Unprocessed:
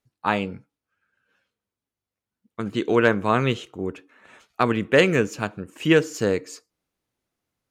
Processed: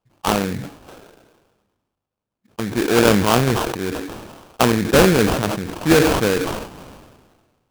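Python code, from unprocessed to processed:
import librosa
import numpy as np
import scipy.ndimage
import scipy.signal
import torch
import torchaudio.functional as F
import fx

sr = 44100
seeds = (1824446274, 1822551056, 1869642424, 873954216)

y = fx.sample_hold(x, sr, seeds[0], rate_hz=2000.0, jitter_pct=20)
y = fx.sustainer(y, sr, db_per_s=39.0)
y = y * 10.0 ** (3.0 / 20.0)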